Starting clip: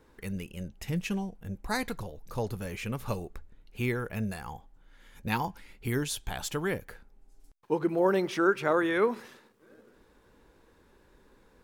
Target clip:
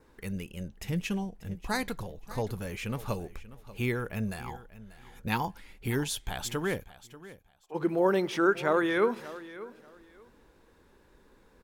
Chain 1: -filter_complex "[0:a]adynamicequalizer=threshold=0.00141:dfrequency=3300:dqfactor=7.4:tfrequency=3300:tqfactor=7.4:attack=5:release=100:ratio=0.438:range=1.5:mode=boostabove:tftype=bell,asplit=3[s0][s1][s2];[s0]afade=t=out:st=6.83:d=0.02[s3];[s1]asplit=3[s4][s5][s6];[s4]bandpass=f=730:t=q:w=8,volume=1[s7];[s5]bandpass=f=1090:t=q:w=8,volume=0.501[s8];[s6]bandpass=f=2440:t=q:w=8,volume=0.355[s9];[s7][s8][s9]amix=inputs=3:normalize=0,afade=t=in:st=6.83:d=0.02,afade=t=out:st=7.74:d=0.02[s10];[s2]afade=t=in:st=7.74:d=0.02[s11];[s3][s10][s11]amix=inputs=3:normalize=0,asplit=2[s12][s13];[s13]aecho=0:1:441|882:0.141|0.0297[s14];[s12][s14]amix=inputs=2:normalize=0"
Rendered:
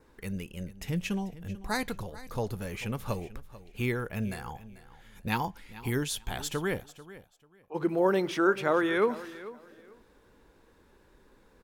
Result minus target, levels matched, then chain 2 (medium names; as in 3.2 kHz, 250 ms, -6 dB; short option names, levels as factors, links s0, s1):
echo 147 ms early
-filter_complex "[0:a]adynamicequalizer=threshold=0.00141:dfrequency=3300:dqfactor=7.4:tfrequency=3300:tqfactor=7.4:attack=5:release=100:ratio=0.438:range=1.5:mode=boostabove:tftype=bell,asplit=3[s0][s1][s2];[s0]afade=t=out:st=6.83:d=0.02[s3];[s1]asplit=3[s4][s5][s6];[s4]bandpass=f=730:t=q:w=8,volume=1[s7];[s5]bandpass=f=1090:t=q:w=8,volume=0.501[s8];[s6]bandpass=f=2440:t=q:w=8,volume=0.355[s9];[s7][s8][s9]amix=inputs=3:normalize=0,afade=t=in:st=6.83:d=0.02,afade=t=out:st=7.74:d=0.02[s10];[s2]afade=t=in:st=7.74:d=0.02[s11];[s3][s10][s11]amix=inputs=3:normalize=0,asplit=2[s12][s13];[s13]aecho=0:1:588|1176:0.141|0.0297[s14];[s12][s14]amix=inputs=2:normalize=0"